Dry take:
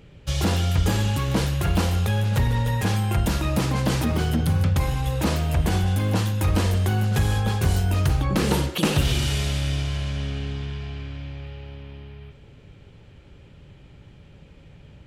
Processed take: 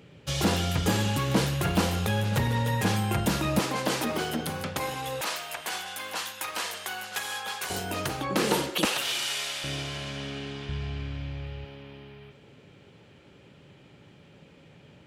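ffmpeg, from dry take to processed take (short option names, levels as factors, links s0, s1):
-af "asetnsamples=n=441:p=0,asendcmd='3.59 highpass f 330;5.21 highpass f 1000;7.7 highpass f 290;8.85 highpass f 800;9.64 highpass f 230;10.69 highpass f 56;11.65 highpass f 180',highpass=140"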